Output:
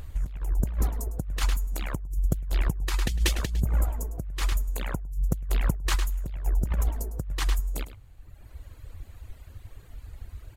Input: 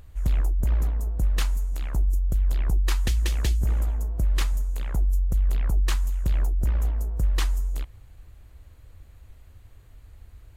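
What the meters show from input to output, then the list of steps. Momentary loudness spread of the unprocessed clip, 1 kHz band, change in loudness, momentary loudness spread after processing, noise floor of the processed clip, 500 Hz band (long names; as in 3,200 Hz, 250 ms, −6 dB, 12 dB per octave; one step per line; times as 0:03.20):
3 LU, +2.5 dB, −3.5 dB, 20 LU, −50 dBFS, +2.0 dB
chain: reverb reduction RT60 1.4 s
slap from a distant wall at 18 metres, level −13 dB
compressor whose output falls as the input rises −28 dBFS, ratio −0.5
level +4 dB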